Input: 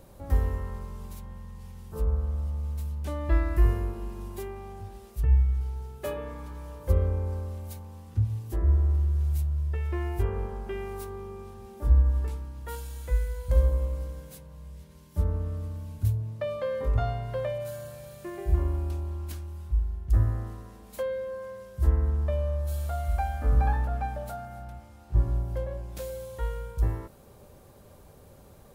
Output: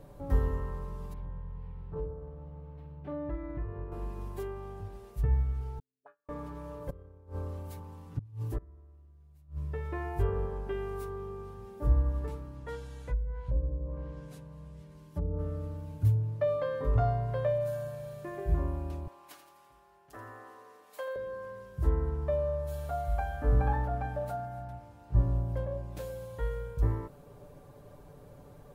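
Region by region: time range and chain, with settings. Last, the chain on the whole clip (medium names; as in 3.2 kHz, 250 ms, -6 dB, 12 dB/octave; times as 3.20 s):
1.13–3.92 s: compression 2.5:1, threshold -34 dBFS + distance through air 420 m + doubling 48 ms -7 dB
5.79–6.29 s: gate -31 dBFS, range -31 dB + auto-wah 240–1500 Hz, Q 12, up, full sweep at -39.5 dBFS + comb 7.2 ms, depth 49%
6.82–9.64 s: transient shaper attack -2 dB, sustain +4 dB + inverted gate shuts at -22 dBFS, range -24 dB
12.55–15.39 s: low-pass that closes with the level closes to 450 Hz, closed at -21 dBFS + compression 1.5:1, threshold -29 dBFS
19.07–21.16 s: high-pass 630 Hz + feedback delay 84 ms, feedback 49%, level -9.5 dB
whole clip: treble shelf 2.5 kHz -10.5 dB; comb 6.9 ms, depth 61%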